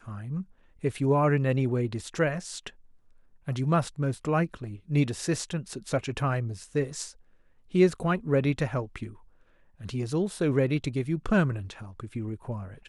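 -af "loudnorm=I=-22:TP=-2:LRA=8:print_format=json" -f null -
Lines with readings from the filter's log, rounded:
"input_i" : "-28.6",
"input_tp" : "-10.4",
"input_lra" : "1.1",
"input_thresh" : "-39.2",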